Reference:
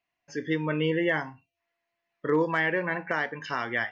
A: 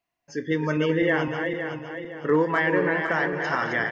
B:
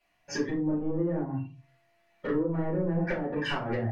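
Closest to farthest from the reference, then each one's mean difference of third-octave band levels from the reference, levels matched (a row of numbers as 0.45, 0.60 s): A, B; 4.5, 8.5 dB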